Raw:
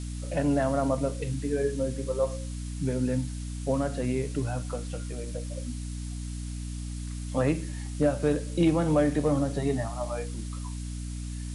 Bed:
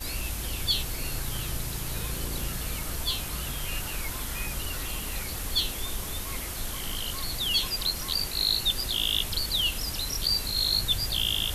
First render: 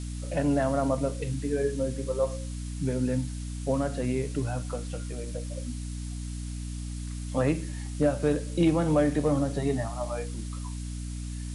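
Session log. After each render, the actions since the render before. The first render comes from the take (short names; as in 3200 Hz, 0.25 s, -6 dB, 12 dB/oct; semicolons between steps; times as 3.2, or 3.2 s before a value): nothing audible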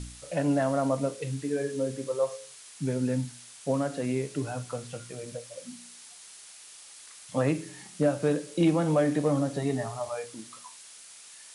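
de-hum 60 Hz, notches 7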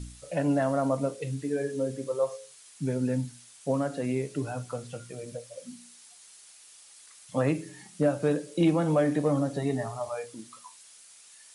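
denoiser 6 dB, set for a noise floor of -49 dBFS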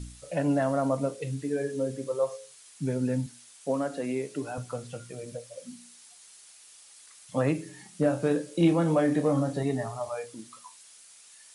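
3.26–4.58 HPF 210 Hz; 8.01–9.63 doubler 30 ms -8 dB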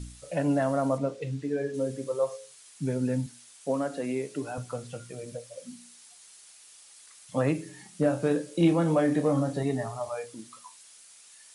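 0.98–1.74 air absorption 80 m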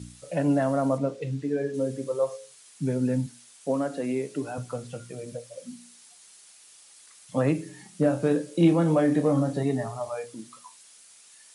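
HPF 110 Hz; low shelf 390 Hz +4.5 dB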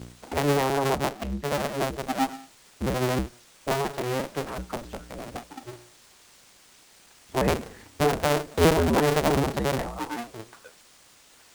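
cycle switcher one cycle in 2, inverted; running maximum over 3 samples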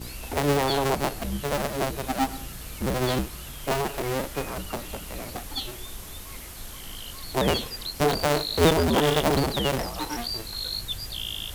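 add bed -6 dB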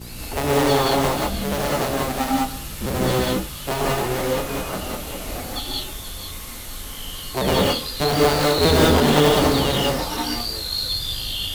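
delay with a stepping band-pass 0.477 s, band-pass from 3900 Hz, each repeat 0.7 oct, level -10 dB; non-linear reverb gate 0.22 s rising, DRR -4 dB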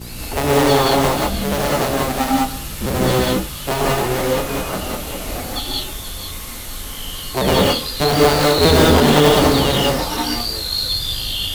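gain +4 dB; limiter -1 dBFS, peak gain reduction 2 dB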